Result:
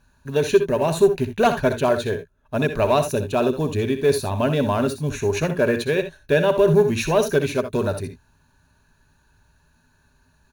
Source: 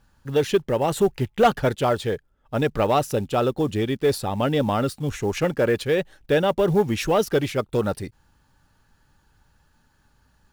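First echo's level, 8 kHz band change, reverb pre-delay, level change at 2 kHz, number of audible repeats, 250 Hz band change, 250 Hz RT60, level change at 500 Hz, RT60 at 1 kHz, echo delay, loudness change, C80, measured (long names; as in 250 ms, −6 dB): −10.5 dB, +2.5 dB, no reverb audible, +3.0 dB, 1, +1.5 dB, no reverb audible, +2.5 dB, no reverb audible, 63 ms, +2.0 dB, no reverb audible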